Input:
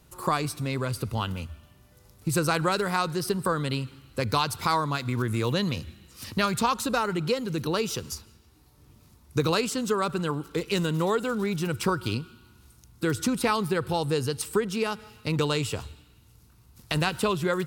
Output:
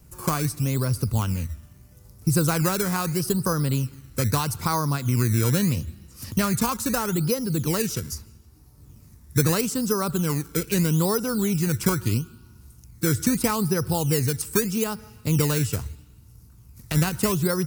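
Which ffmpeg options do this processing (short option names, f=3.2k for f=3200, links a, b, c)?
-filter_complex "[0:a]highshelf=f=3.5k:g=-11.5,acrossover=split=750|1100[a][b][c];[a]acrusher=samples=16:mix=1:aa=0.000001:lfo=1:lforange=16:lforate=0.78[d];[d][b][c]amix=inputs=3:normalize=0,bass=f=250:g=8,treble=f=4k:g=-2,aexciter=amount=4.9:drive=5.2:freq=5k"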